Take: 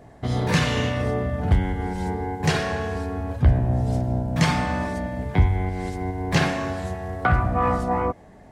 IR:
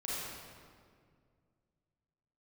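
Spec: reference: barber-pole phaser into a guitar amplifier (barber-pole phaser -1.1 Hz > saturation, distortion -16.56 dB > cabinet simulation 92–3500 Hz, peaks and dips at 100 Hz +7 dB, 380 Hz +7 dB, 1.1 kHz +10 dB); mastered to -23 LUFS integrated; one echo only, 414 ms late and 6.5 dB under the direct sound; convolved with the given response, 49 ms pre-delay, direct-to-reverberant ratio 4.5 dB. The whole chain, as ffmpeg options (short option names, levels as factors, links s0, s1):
-filter_complex "[0:a]aecho=1:1:414:0.473,asplit=2[s0][s1];[1:a]atrim=start_sample=2205,adelay=49[s2];[s1][s2]afir=irnorm=-1:irlink=0,volume=0.398[s3];[s0][s3]amix=inputs=2:normalize=0,asplit=2[s4][s5];[s5]afreqshift=-1.1[s6];[s4][s6]amix=inputs=2:normalize=1,asoftclip=threshold=0.188,highpass=92,equalizer=f=100:t=q:w=4:g=7,equalizer=f=380:t=q:w=4:g=7,equalizer=f=1100:t=q:w=4:g=10,lowpass=f=3500:w=0.5412,lowpass=f=3500:w=1.3066,volume=1.19"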